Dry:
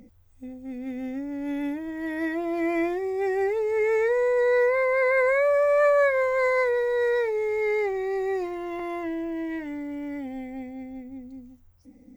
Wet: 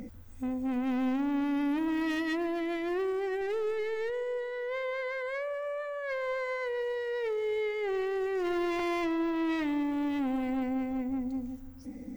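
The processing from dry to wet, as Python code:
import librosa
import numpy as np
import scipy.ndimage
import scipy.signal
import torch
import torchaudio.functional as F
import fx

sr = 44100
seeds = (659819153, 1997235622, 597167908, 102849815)

p1 = fx.halfwave_gain(x, sr, db=-7.0, at=(3.41, 4.1))
p2 = fx.peak_eq(p1, sr, hz=1500.0, db=4.0, octaves=0.63)
p3 = fx.over_compress(p2, sr, threshold_db=-31.0, ratio=-1.0)
p4 = 10.0 ** (-31.5 / 20.0) * np.tanh(p3 / 10.0 ** (-31.5 / 20.0))
p5 = p4 + fx.echo_filtered(p4, sr, ms=140, feedback_pct=72, hz=1100.0, wet_db=-17.0, dry=0)
y = F.gain(torch.from_numpy(p5), 3.5).numpy()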